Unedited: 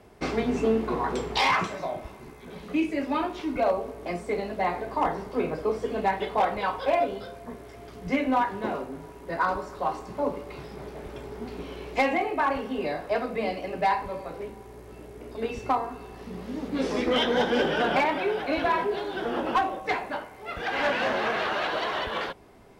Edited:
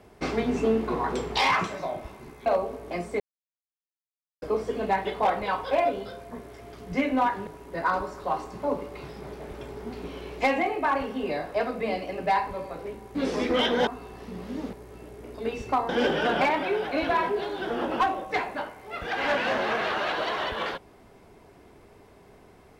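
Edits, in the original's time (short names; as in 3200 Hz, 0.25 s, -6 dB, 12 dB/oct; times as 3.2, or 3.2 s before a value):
2.46–3.61 cut
4.35–5.57 mute
8.62–9.02 cut
14.7–15.86 swap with 16.72–17.44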